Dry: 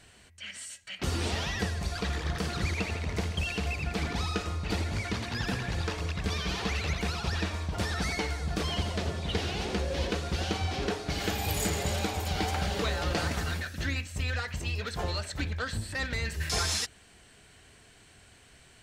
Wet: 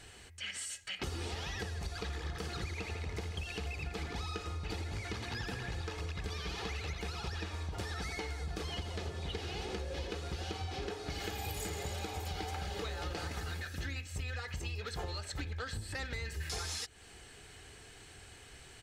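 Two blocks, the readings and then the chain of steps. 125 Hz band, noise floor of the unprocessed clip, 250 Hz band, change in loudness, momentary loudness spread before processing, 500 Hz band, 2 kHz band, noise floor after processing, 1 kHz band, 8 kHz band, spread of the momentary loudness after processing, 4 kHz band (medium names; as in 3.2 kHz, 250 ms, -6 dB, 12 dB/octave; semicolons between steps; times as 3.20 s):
-8.0 dB, -57 dBFS, -10.5 dB, -8.0 dB, 4 LU, -7.5 dB, -8.0 dB, -55 dBFS, -8.0 dB, -7.5 dB, 4 LU, -7.5 dB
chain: comb 2.4 ms, depth 37%; compression, threshold -39 dBFS, peak gain reduction 14.5 dB; trim +2 dB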